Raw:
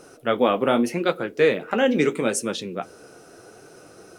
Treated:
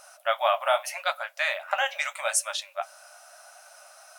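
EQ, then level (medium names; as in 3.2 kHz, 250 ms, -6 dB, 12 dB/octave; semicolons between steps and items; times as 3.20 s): brick-wall FIR high-pass 560 Hz; treble shelf 9.6 kHz +6.5 dB; 0.0 dB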